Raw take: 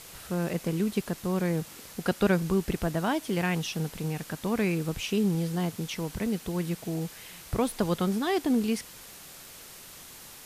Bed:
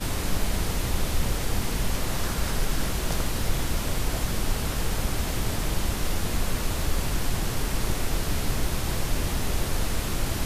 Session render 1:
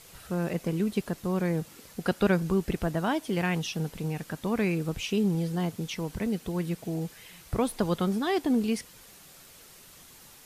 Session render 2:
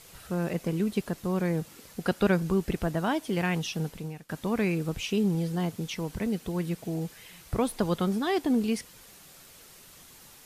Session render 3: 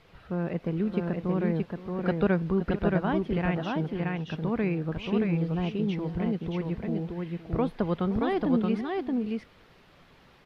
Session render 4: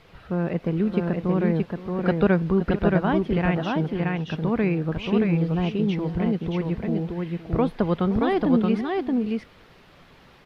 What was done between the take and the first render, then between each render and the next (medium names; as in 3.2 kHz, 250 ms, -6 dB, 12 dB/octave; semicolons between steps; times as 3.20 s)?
noise reduction 6 dB, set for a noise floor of -47 dBFS
3.85–4.29 s: fade out, to -19.5 dB
distance through air 350 m; multi-tap echo 519/625 ms -16.5/-3 dB
trim +5 dB